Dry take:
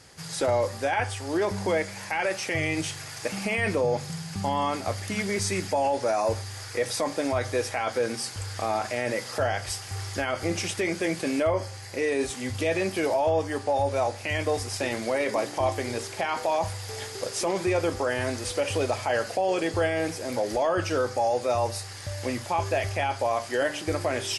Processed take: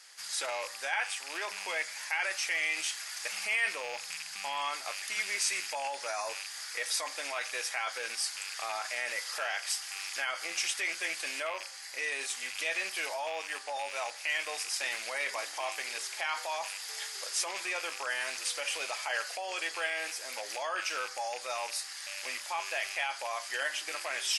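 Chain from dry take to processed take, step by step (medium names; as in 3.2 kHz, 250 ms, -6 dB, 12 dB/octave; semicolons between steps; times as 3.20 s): rattle on loud lows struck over -34 dBFS, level -28 dBFS; high-pass 1.4 kHz 12 dB/octave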